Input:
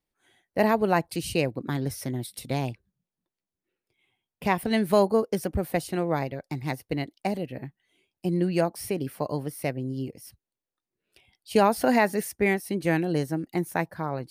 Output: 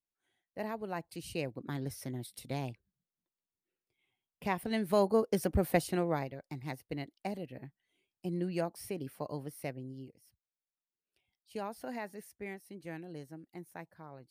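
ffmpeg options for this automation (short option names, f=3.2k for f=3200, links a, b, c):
-af "volume=-1dB,afade=t=in:st=0.89:d=0.89:silence=0.421697,afade=t=in:st=4.85:d=0.84:silence=0.398107,afade=t=out:st=5.69:d=0.62:silence=0.354813,afade=t=out:st=9.62:d=0.59:silence=0.334965"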